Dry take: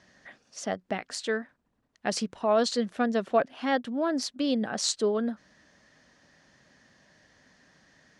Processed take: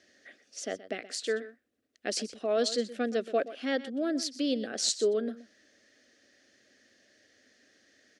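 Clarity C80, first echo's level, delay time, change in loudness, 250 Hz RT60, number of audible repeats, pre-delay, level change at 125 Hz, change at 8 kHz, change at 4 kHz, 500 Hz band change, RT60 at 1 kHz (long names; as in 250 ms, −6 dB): no reverb audible, −15.5 dB, 124 ms, −2.5 dB, no reverb audible, 1, no reverb audible, can't be measured, 0.0 dB, −0.5 dB, −2.0 dB, no reverb audible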